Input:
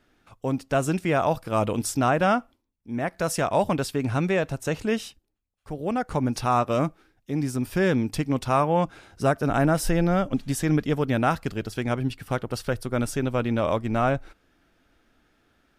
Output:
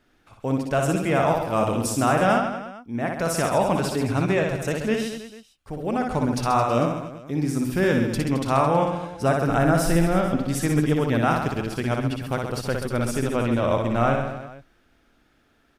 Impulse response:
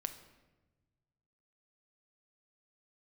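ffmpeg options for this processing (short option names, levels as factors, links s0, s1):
-af "aecho=1:1:60|132|218.4|322.1|446.5:0.631|0.398|0.251|0.158|0.1"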